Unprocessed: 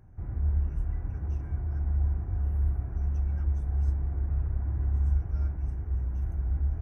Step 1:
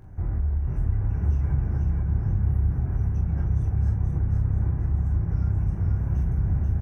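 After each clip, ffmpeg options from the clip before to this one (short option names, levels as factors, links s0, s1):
-filter_complex "[0:a]asplit=2[s0][s1];[s1]aecho=0:1:23|43:0.501|0.501[s2];[s0][s2]amix=inputs=2:normalize=0,acompressor=threshold=0.0316:ratio=6,asplit=2[s3][s4];[s4]asplit=6[s5][s6][s7][s8][s9][s10];[s5]adelay=484,afreqshift=32,volume=0.668[s11];[s6]adelay=968,afreqshift=64,volume=0.32[s12];[s7]adelay=1452,afreqshift=96,volume=0.153[s13];[s8]adelay=1936,afreqshift=128,volume=0.0741[s14];[s9]adelay=2420,afreqshift=160,volume=0.0355[s15];[s10]adelay=2904,afreqshift=192,volume=0.017[s16];[s11][s12][s13][s14][s15][s16]amix=inputs=6:normalize=0[s17];[s3][s17]amix=inputs=2:normalize=0,volume=2.51"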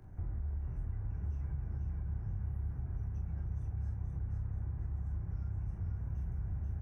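-filter_complex "[0:a]acrossover=split=120|500[s0][s1][s2];[s0]acompressor=threshold=0.0355:ratio=4[s3];[s1]acompressor=threshold=0.00631:ratio=4[s4];[s2]acompressor=threshold=0.00141:ratio=4[s5];[s3][s4][s5]amix=inputs=3:normalize=0,volume=0.447"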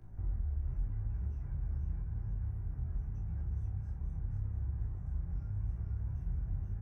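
-af "lowshelf=f=68:g=8.5,asoftclip=type=hard:threshold=0.0501,flanger=delay=17:depth=7.8:speed=0.86"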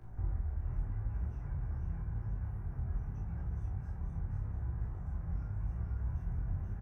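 -filter_complex "[0:a]equalizer=f=1100:t=o:w=2.5:g=6.5,asplit=2[s0][s1];[s1]adelay=35,volume=0.398[s2];[s0][s2]amix=inputs=2:normalize=0,volume=1.12"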